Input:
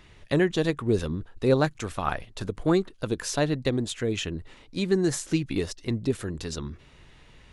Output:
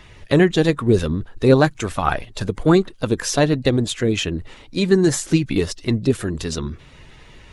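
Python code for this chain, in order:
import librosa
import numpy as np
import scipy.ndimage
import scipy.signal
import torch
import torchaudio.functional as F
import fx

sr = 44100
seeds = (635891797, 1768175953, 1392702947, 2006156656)

y = fx.spec_quant(x, sr, step_db=15)
y = y * librosa.db_to_amplitude(8.5)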